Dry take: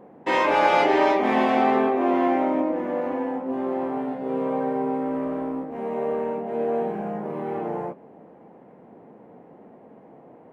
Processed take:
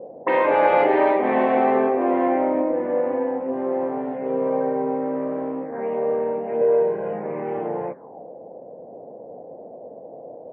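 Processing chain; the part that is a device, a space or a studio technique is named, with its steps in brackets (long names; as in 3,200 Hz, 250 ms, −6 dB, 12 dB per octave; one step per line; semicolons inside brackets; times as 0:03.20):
0:06.61–0:07.13: comb filter 2 ms, depth 67%
envelope filter bass rig (envelope-controlled low-pass 530–4,500 Hz up, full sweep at −23.5 dBFS; loudspeaker in its box 86–2,100 Hz, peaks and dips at 100 Hz +6 dB, 210 Hz −3 dB, 510 Hz +7 dB, 1,300 Hz −4 dB)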